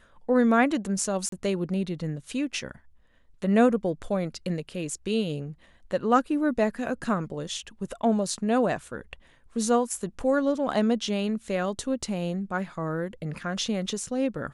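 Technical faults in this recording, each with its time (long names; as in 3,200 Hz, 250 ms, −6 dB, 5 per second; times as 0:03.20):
0:01.29–0:01.32: drop-out 33 ms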